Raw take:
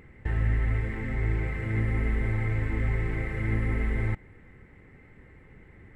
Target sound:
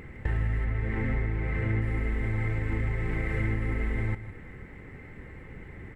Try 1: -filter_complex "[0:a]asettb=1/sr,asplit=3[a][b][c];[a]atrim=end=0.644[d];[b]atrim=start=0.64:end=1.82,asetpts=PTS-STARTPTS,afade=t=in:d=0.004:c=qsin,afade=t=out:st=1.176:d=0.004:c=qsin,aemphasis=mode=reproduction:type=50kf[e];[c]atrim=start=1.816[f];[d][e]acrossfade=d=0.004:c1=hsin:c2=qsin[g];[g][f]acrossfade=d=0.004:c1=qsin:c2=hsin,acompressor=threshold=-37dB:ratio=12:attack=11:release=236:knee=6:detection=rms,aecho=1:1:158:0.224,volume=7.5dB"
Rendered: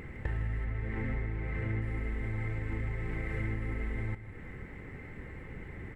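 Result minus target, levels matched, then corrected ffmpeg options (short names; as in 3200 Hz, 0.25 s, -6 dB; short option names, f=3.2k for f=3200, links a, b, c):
compressor: peak gain reduction +6 dB
-filter_complex "[0:a]asettb=1/sr,asplit=3[a][b][c];[a]atrim=end=0.644[d];[b]atrim=start=0.64:end=1.82,asetpts=PTS-STARTPTS,afade=t=in:d=0.004:c=qsin,afade=t=out:st=1.176:d=0.004:c=qsin,aemphasis=mode=reproduction:type=50kf[e];[c]atrim=start=1.816[f];[d][e]acrossfade=d=0.004:c1=hsin:c2=qsin[g];[g][f]acrossfade=d=0.004:c1=qsin:c2=hsin,acompressor=threshold=-30.5dB:ratio=12:attack=11:release=236:knee=6:detection=rms,aecho=1:1:158:0.224,volume=7.5dB"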